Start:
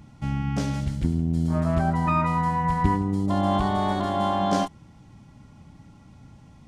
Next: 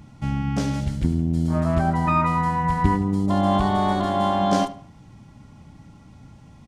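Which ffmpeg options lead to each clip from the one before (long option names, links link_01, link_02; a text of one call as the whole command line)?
ffmpeg -i in.wav -filter_complex "[0:a]asplit=2[link_01][link_02];[link_02]adelay=76,lowpass=frequency=3300:poles=1,volume=-15dB,asplit=2[link_03][link_04];[link_04]adelay=76,lowpass=frequency=3300:poles=1,volume=0.38,asplit=2[link_05][link_06];[link_06]adelay=76,lowpass=frequency=3300:poles=1,volume=0.38[link_07];[link_01][link_03][link_05][link_07]amix=inputs=4:normalize=0,volume=2.5dB" out.wav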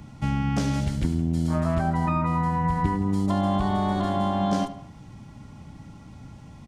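ffmpeg -i in.wav -filter_complex "[0:a]acrossover=split=250|810[link_01][link_02][link_03];[link_01]acompressor=threshold=-26dB:ratio=4[link_04];[link_02]acompressor=threshold=-33dB:ratio=4[link_05];[link_03]acompressor=threshold=-35dB:ratio=4[link_06];[link_04][link_05][link_06]amix=inputs=3:normalize=0,volume=2.5dB" out.wav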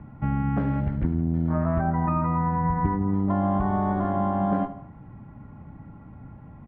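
ffmpeg -i in.wav -af "lowpass=frequency=1800:width=0.5412,lowpass=frequency=1800:width=1.3066" out.wav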